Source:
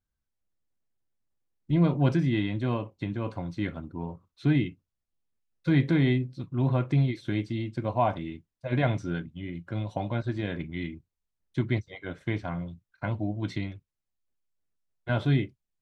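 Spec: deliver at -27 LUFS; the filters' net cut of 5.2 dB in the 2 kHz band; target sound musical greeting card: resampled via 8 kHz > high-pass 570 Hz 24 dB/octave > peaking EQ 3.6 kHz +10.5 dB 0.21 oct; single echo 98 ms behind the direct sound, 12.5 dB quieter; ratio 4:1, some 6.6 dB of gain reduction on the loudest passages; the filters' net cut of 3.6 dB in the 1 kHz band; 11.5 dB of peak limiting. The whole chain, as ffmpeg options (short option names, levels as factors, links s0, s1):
-af "equalizer=f=1000:t=o:g=-3.5,equalizer=f=2000:t=o:g=-5.5,acompressor=threshold=0.0501:ratio=4,alimiter=level_in=1.68:limit=0.0631:level=0:latency=1,volume=0.596,aecho=1:1:98:0.237,aresample=8000,aresample=44100,highpass=f=570:w=0.5412,highpass=f=570:w=1.3066,equalizer=f=3600:t=o:w=0.21:g=10.5,volume=12.6"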